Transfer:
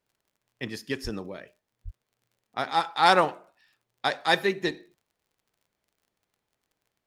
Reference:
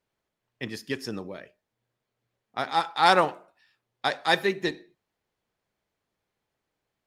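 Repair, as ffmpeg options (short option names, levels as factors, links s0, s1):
-filter_complex "[0:a]adeclick=t=4,asplit=3[s0][s1][s2];[s0]afade=t=out:st=1.03:d=0.02[s3];[s1]highpass=f=140:w=0.5412,highpass=f=140:w=1.3066,afade=t=in:st=1.03:d=0.02,afade=t=out:st=1.15:d=0.02[s4];[s2]afade=t=in:st=1.15:d=0.02[s5];[s3][s4][s5]amix=inputs=3:normalize=0,asplit=3[s6][s7][s8];[s6]afade=t=out:st=1.84:d=0.02[s9];[s7]highpass=f=140:w=0.5412,highpass=f=140:w=1.3066,afade=t=in:st=1.84:d=0.02,afade=t=out:st=1.96:d=0.02[s10];[s8]afade=t=in:st=1.96:d=0.02[s11];[s9][s10][s11]amix=inputs=3:normalize=0"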